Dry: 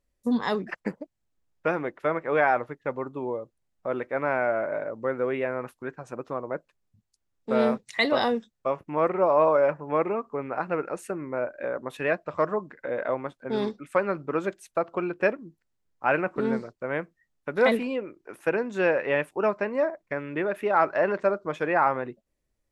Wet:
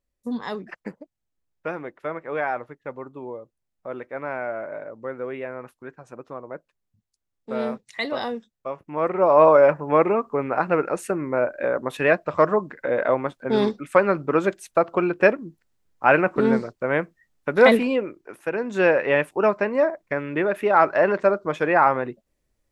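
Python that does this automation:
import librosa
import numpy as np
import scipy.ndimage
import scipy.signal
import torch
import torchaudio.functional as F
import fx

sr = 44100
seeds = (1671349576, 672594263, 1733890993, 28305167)

y = fx.gain(x, sr, db=fx.line((8.77, -4.0), (9.44, 7.0), (18.06, 7.0), (18.5, -2.0), (18.72, 5.0)))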